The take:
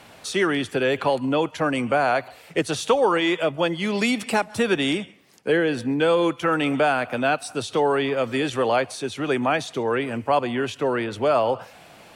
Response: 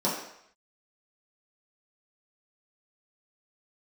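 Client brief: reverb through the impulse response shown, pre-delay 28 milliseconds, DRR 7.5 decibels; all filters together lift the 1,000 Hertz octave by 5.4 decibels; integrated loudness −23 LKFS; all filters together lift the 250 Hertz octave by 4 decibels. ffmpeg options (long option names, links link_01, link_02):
-filter_complex "[0:a]equalizer=frequency=250:width_type=o:gain=4.5,equalizer=frequency=1000:width_type=o:gain=7,asplit=2[link_01][link_02];[1:a]atrim=start_sample=2205,adelay=28[link_03];[link_02][link_03]afir=irnorm=-1:irlink=0,volume=-19dB[link_04];[link_01][link_04]amix=inputs=2:normalize=0,volume=-4.5dB"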